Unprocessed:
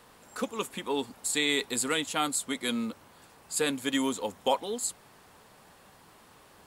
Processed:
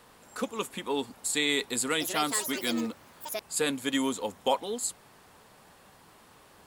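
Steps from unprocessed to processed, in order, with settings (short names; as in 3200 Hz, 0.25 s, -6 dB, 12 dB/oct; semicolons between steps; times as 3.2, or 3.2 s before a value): 1.67–3.67 echoes that change speed 0.309 s, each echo +6 st, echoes 2, each echo -6 dB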